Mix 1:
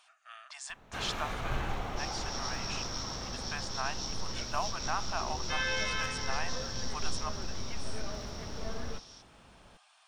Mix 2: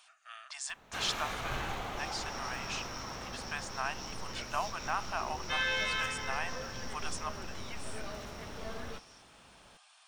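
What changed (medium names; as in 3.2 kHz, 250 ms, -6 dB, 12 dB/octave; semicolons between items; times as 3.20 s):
second sound: add resonant high shelf 2.7 kHz -8.5 dB, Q 3; master: add tilt EQ +1.5 dB/octave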